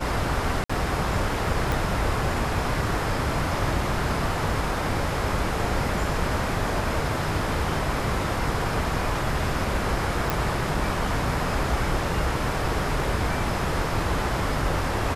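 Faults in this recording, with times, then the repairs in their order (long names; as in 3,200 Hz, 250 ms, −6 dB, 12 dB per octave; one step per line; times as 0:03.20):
0:00.64–0:00.69: drop-out 55 ms
0:01.72: click
0:10.30: click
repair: click removal
repair the gap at 0:00.64, 55 ms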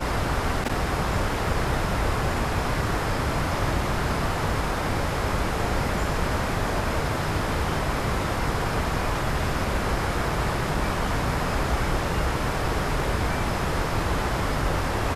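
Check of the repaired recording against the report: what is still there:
0:01.72: click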